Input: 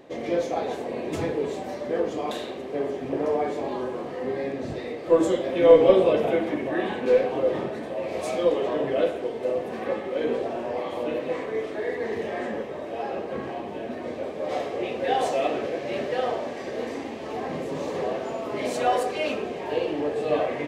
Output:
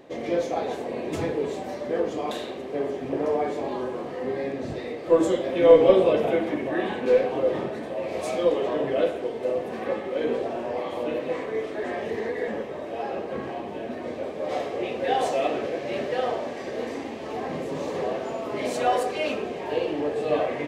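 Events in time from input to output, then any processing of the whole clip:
0:11.84–0:12.48: reverse

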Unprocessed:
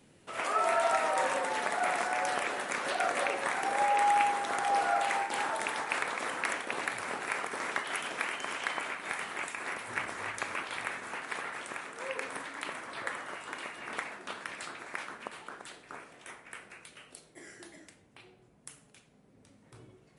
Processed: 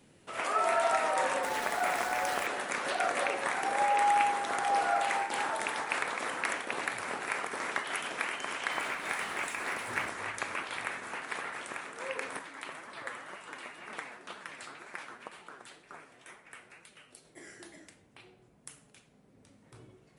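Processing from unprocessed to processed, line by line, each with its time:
0:01.43–0:02.47: centre clipping without the shift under −38 dBFS
0:08.71–0:10.09: mu-law and A-law mismatch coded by mu
0:12.39–0:17.25: flanger 2 Hz, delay 4.5 ms, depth 4.2 ms, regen +47%

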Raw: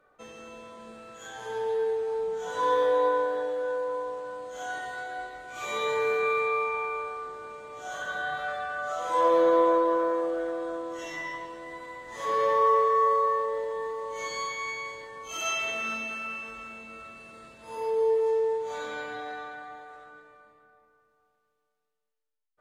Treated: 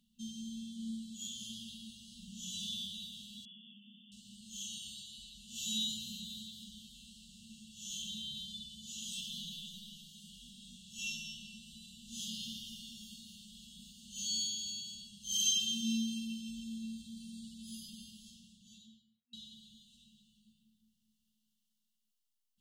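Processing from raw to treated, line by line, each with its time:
0:03.45–0:04.12: linear-phase brick-wall band-pass 150–3,600 Hz
0:17.95–0:19.33: fade out and dull
whole clip: brick-wall band-stop 240–2,700 Hz; low shelf with overshoot 170 Hz −6.5 dB, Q 3; level +5.5 dB

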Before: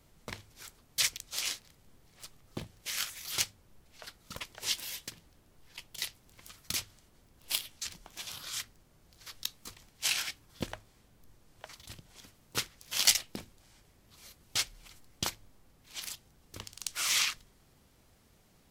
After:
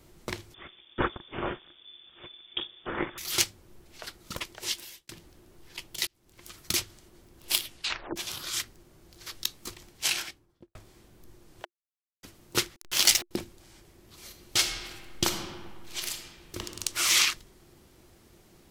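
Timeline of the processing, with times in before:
0:00.54–0:03.18: voice inversion scrambler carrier 3,500 Hz
0:04.36–0:05.09: fade out
0:06.07–0:06.60: fade in
0:07.69: tape stop 0.47 s
0:09.89–0:10.75: fade out and dull
0:11.65–0:12.23: silence
0:12.76–0:13.31: hold until the input has moved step −39.5 dBFS
0:14.27–0:16.66: thrown reverb, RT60 1.7 s, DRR 4 dB
whole clip: parametric band 350 Hz +12.5 dB 0.25 octaves; boost into a limiter +8 dB; level −2 dB

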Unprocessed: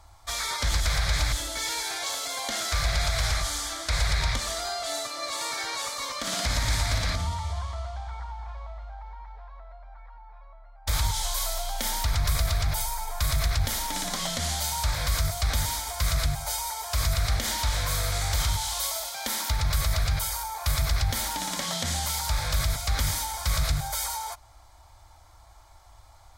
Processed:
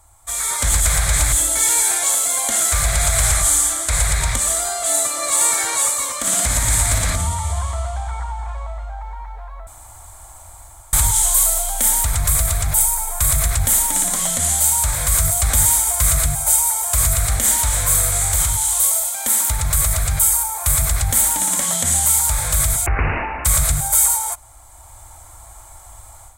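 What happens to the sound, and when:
0:09.67–0:10.93: fill with room tone
0:22.86–0:23.45: bad sample-rate conversion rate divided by 8×, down none, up filtered
whole clip: high shelf with overshoot 6,400 Hz +9 dB, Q 3; automatic gain control; level −1 dB

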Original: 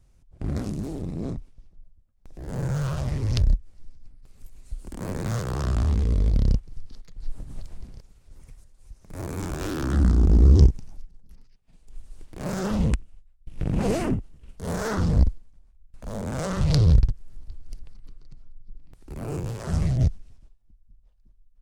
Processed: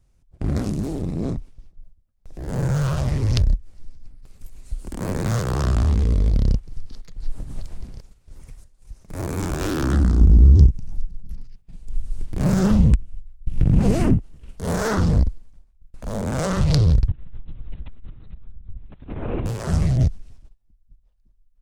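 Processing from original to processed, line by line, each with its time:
0:10.21–0:14.18: bass and treble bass +11 dB, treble +1 dB
0:17.08–0:19.46: linear-prediction vocoder at 8 kHz whisper
whole clip: noise gate −48 dBFS, range −8 dB; downward compressor 2.5 to 1, threshold −20 dBFS; level +5.5 dB

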